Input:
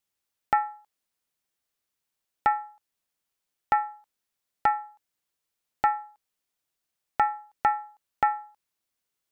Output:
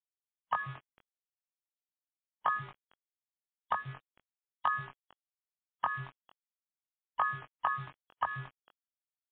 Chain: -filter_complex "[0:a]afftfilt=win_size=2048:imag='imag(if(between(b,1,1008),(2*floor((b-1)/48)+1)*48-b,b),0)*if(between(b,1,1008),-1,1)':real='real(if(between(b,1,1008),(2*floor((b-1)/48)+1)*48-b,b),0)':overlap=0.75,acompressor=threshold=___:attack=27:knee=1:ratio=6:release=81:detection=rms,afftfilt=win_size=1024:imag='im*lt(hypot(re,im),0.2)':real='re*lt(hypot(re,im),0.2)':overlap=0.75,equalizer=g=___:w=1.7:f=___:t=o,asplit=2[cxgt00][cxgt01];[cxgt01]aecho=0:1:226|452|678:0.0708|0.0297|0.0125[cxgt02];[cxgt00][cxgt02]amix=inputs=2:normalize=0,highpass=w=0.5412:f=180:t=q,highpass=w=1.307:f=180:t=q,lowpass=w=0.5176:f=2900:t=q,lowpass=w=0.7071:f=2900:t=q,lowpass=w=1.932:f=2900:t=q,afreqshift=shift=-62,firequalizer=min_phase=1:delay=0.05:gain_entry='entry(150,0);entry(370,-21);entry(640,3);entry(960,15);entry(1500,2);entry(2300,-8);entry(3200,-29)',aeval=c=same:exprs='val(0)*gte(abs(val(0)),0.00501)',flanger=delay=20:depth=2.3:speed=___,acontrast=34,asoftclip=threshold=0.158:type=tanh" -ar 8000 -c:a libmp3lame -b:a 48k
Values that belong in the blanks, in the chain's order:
0.0501, -4.5, 330, 0.41